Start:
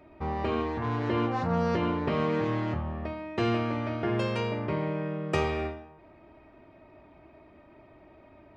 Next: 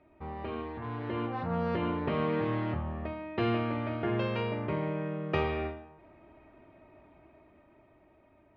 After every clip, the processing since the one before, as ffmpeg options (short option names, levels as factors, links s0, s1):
-af "lowpass=f=3800:w=0.5412,lowpass=f=3800:w=1.3066,dynaudnorm=f=280:g=11:m=2.11,volume=0.376"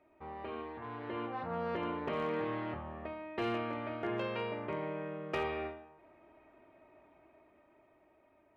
-af "bass=f=250:g=-10,treble=f=4000:g=-4,volume=16.8,asoftclip=hard,volume=0.0596,volume=0.708"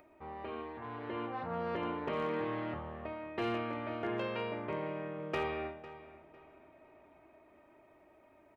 -filter_complex "[0:a]acompressor=mode=upward:threshold=0.00158:ratio=2.5,asplit=2[s0][s1];[s1]adelay=502,lowpass=f=4400:p=1,volume=0.158,asplit=2[s2][s3];[s3]adelay=502,lowpass=f=4400:p=1,volume=0.32,asplit=2[s4][s5];[s5]adelay=502,lowpass=f=4400:p=1,volume=0.32[s6];[s0][s2][s4][s6]amix=inputs=4:normalize=0"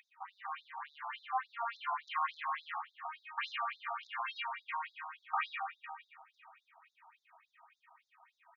-af "afftfilt=real='re*between(b*sr/1024,950*pow(5100/950,0.5+0.5*sin(2*PI*3.5*pts/sr))/1.41,950*pow(5100/950,0.5+0.5*sin(2*PI*3.5*pts/sr))*1.41)':imag='im*between(b*sr/1024,950*pow(5100/950,0.5+0.5*sin(2*PI*3.5*pts/sr))/1.41,950*pow(5100/950,0.5+0.5*sin(2*PI*3.5*pts/sr))*1.41)':win_size=1024:overlap=0.75,volume=2.66"